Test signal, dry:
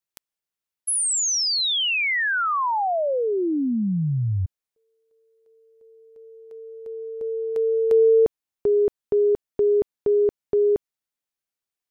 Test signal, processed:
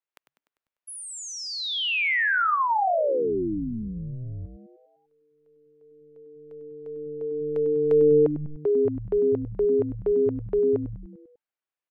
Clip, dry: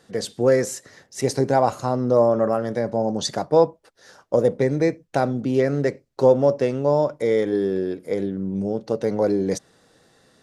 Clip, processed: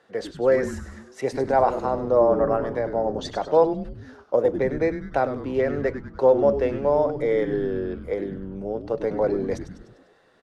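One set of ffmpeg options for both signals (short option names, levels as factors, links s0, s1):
-filter_complex "[0:a]acrossover=split=360 3100:gain=0.251 1 0.158[s0][s1][s2];[s0][s1][s2]amix=inputs=3:normalize=0,asplit=7[s3][s4][s5][s6][s7][s8][s9];[s4]adelay=99,afreqshift=-150,volume=0.316[s10];[s5]adelay=198,afreqshift=-300,volume=0.178[s11];[s6]adelay=297,afreqshift=-450,volume=0.0989[s12];[s7]adelay=396,afreqshift=-600,volume=0.0556[s13];[s8]adelay=495,afreqshift=-750,volume=0.0313[s14];[s9]adelay=594,afreqshift=-900,volume=0.0174[s15];[s3][s10][s11][s12][s13][s14][s15]amix=inputs=7:normalize=0"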